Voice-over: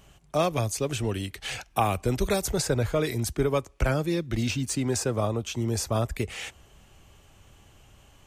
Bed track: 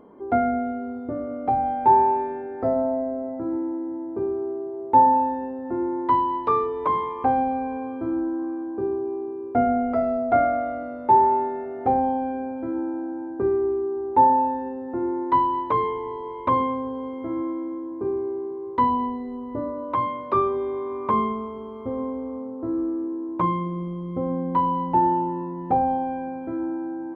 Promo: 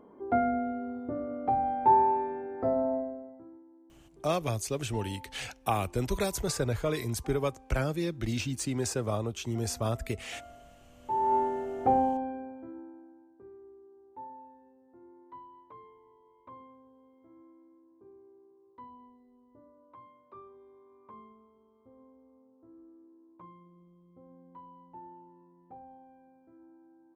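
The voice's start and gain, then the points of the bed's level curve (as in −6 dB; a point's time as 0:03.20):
3.90 s, −4.5 dB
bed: 0:02.96 −5.5 dB
0:03.65 −29 dB
0:10.89 −29 dB
0:11.35 −3.5 dB
0:12.01 −3.5 dB
0:13.39 −29 dB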